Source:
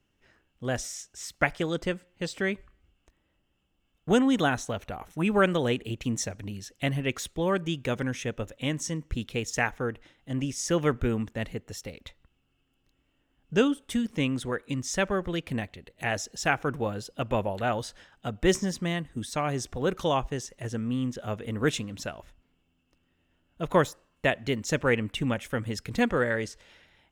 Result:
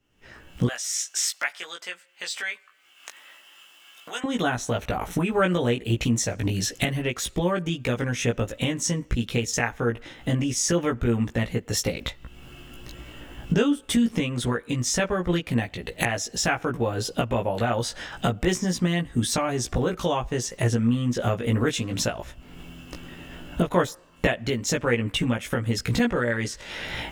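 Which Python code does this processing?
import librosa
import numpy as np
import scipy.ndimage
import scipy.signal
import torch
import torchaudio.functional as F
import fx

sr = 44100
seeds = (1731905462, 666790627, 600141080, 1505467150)

y = fx.recorder_agc(x, sr, target_db=-16.0, rise_db_per_s=48.0, max_gain_db=30)
y = fx.highpass(y, sr, hz=1300.0, slope=12, at=(0.67, 4.24))
y = fx.doubler(y, sr, ms=17.0, db=-2.5)
y = y * 10.0 ** (-1.5 / 20.0)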